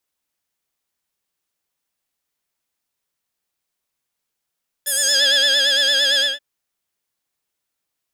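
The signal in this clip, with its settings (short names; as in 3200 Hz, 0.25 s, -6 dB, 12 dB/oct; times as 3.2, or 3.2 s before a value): synth patch with vibrato C#5, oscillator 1 triangle, oscillator 2 saw, interval +19 st, oscillator 2 level -2.5 dB, noise -30 dB, filter bandpass, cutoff 3000 Hz, Q 2.5, filter envelope 2 oct, filter decay 0.37 s, filter sustain 20%, attack 16 ms, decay 0.82 s, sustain -2.5 dB, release 0.19 s, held 1.34 s, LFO 8.8 Hz, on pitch 73 cents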